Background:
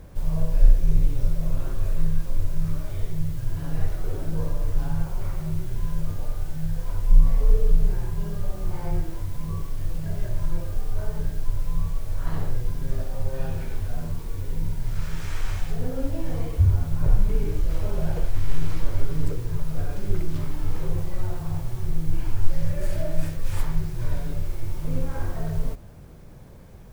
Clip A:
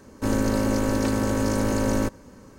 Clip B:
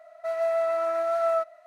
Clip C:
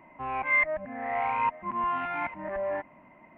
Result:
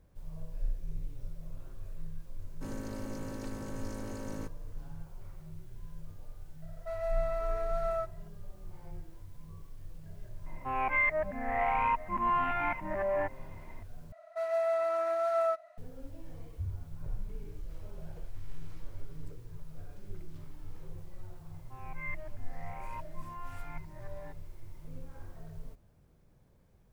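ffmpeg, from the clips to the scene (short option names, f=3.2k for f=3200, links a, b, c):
-filter_complex "[2:a]asplit=2[a][b];[3:a]asplit=2[c][d];[0:a]volume=-19dB[e];[c]alimiter=limit=-20.5dB:level=0:latency=1:release=71[f];[e]asplit=2[g][h];[g]atrim=end=14.124[i];[b]atrim=end=1.66,asetpts=PTS-STARTPTS,volume=-4.5dB[j];[h]atrim=start=15.776[k];[1:a]atrim=end=2.58,asetpts=PTS-STARTPTS,volume=-18dB,afade=t=in:d=0.004:c=hsin,afade=t=out:st=2.576:d=0.004:c=hsin,adelay=2390[l];[a]atrim=end=1.66,asetpts=PTS-STARTPTS,volume=-9dB,afade=t=in:d=0.004:c=hsin,afade=t=out:st=1.656:d=0.004:c=hsin,adelay=6620[m];[f]atrim=end=3.37,asetpts=PTS-STARTPTS,afade=t=in:d=0.004:c=hsin,afade=t=out:st=3.366:d=0.004:c=hsin,adelay=10460[n];[d]atrim=end=3.37,asetpts=PTS-STARTPTS,volume=-17.5dB,afade=t=in:d=0.004:c=hsin,afade=t=out:st=3.366:d=0.004:c=hsin,adelay=21510[o];[i][j]acrossfade=d=0.004:c1=hsin:c2=hsin[p];[p][k]acrossfade=d=0.004:c1=hsin:c2=hsin[q];[q][l][m][n][o]amix=inputs=5:normalize=0"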